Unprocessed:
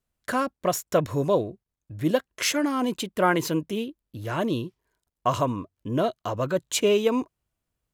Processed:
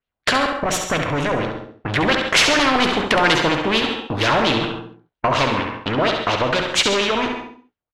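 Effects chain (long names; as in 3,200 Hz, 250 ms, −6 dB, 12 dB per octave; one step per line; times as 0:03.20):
source passing by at 0:02.82, 10 m/s, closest 8.7 metres
low-shelf EQ 180 Hz −6.5 dB
mains-hum notches 60/120/180/240/300/360/420 Hz
in parallel at +1 dB: downward compressor, threshold −39 dBFS, peak gain reduction 19.5 dB
on the sum: leveller curve on the samples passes 5
gain on a spectral selection 0:00.61–0:01.70, 310–5,400 Hz −7 dB
auto-filter low-pass sine 4.3 Hz 740–3,600 Hz
on a send: repeating echo 68 ms, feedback 36%, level −9 dB
on the sum: reverb whose tail is shaped and stops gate 180 ms flat, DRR 11 dB
every bin compressed towards the loudest bin 2 to 1
level −3 dB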